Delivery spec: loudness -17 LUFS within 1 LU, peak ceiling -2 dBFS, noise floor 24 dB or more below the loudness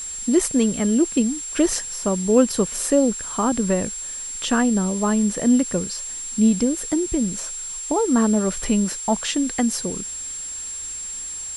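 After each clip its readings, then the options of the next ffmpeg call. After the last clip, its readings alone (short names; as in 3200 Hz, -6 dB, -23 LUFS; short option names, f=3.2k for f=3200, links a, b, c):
steady tone 7500 Hz; tone level -29 dBFS; noise floor -32 dBFS; noise floor target -46 dBFS; loudness -21.5 LUFS; peak -3.5 dBFS; loudness target -17.0 LUFS
-> -af "bandreject=f=7.5k:w=30"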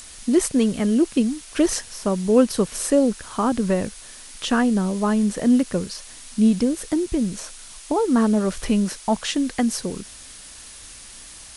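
steady tone none; noise floor -42 dBFS; noise floor target -46 dBFS
-> -af "afftdn=nr=6:nf=-42"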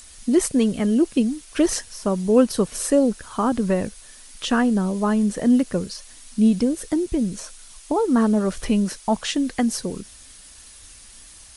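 noise floor -46 dBFS; loudness -21.5 LUFS; peak -4.0 dBFS; loudness target -17.0 LUFS
-> -af "volume=4.5dB,alimiter=limit=-2dB:level=0:latency=1"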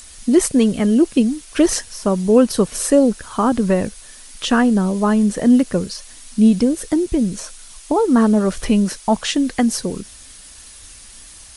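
loudness -17.0 LUFS; peak -2.0 dBFS; noise floor -41 dBFS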